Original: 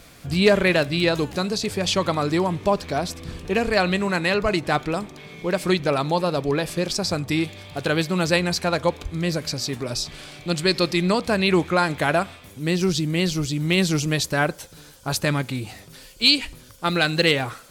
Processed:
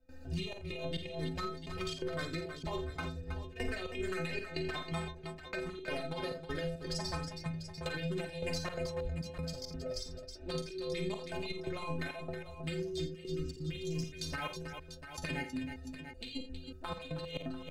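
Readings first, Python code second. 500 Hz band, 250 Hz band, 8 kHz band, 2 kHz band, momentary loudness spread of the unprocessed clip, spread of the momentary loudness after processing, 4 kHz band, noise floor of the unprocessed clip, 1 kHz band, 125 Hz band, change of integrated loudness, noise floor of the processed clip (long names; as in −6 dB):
−16.5 dB, −17.5 dB, −19.0 dB, −18.0 dB, 10 LU, 6 LU, −19.0 dB, −47 dBFS, −18.5 dB, −14.5 dB, −17.5 dB, −50 dBFS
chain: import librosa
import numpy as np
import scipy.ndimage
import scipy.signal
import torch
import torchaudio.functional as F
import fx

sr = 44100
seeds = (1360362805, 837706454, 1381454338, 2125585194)

y = fx.wiener(x, sr, points=41)
y = fx.env_flanger(y, sr, rest_ms=4.0, full_db=-17.0)
y = fx.peak_eq(y, sr, hz=150.0, db=-14.5, octaves=1.9)
y = fx.stiff_resonator(y, sr, f0_hz=77.0, decay_s=0.66, stiffness=0.03)
y = fx.step_gate(y, sr, bpm=171, pattern='.xxxxx..xxx', floor_db=-24.0, edge_ms=4.5)
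y = fx.over_compress(y, sr, threshold_db=-46.0, ratio=-1.0)
y = fx.low_shelf(y, sr, hz=85.0, db=11.5)
y = fx.echo_multitap(y, sr, ms=(43, 53, 85, 319, 693), db=(-10.5, -9.5, -14.0, -10.0, -14.5))
y = fx.band_squash(y, sr, depth_pct=40)
y = y * 10.0 ** (5.0 / 20.0)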